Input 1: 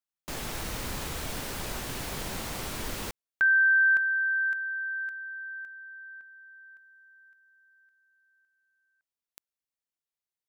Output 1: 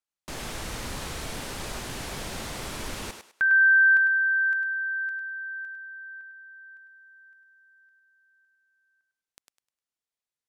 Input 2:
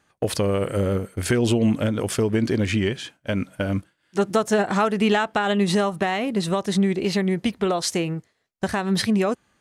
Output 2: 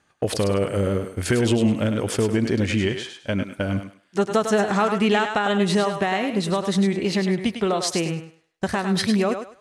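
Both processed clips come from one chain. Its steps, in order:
low-pass filter 11,000 Hz 12 dB per octave
on a send: feedback echo with a high-pass in the loop 102 ms, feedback 27%, high-pass 380 Hz, level −6.5 dB

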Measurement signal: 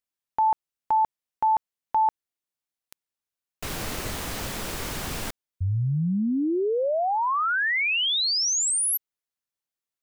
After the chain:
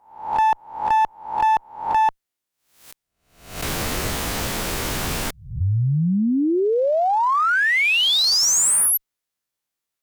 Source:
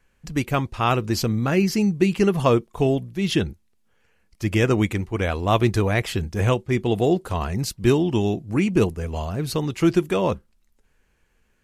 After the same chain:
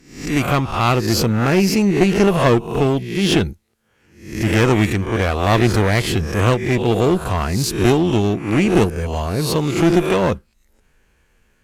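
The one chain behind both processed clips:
peak hold with a rise ahead of every peak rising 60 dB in 0.54 s
asymmetric clip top −21 dBFS
level +5 dB

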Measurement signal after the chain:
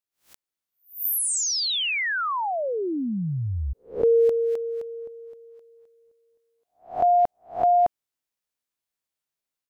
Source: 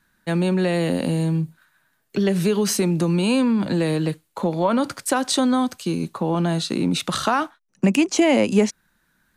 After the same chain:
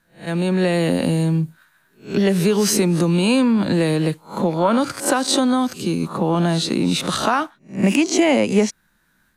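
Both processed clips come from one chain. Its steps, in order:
peak hold with a rise ahead of every peak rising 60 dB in 0.32 s
automatic gain control gain up to 5 dB
level −2 dB

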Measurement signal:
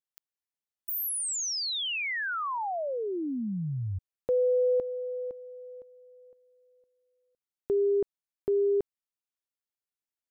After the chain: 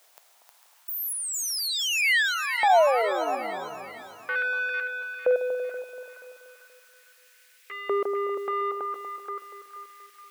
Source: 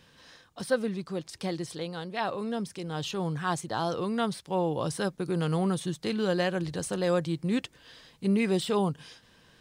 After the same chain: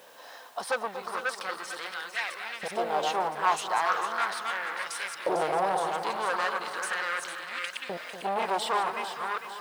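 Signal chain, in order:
delay that plays each chunk backwards 335 ms, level −4.5 dB
high-pass filter 81 Hz 6 dB per octave
tilt shelving filter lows +6 dB, about 1,200 Hz
in parallel at +0.5 dB: brickwall limiter −17 dBFS
on the sum: bit-depth reduction 10 bits, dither triangular
soft clipping −19 dBFS
auto-filter high-pass saw up 0.38 Hz 620–2,400 Hz
echo with a time of its own for lows and highs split 1,200 Hz, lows 239 ms, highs 450 ms, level −9 dB

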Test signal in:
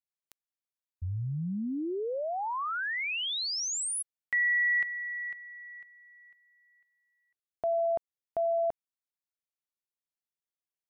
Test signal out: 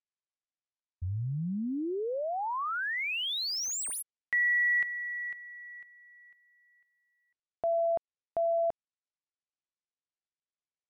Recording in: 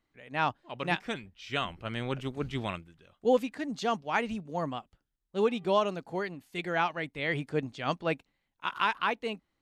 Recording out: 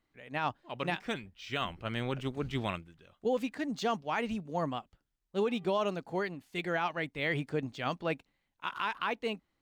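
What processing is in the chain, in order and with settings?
running median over 3 samples
brickwall limiter −21.5 dBFS

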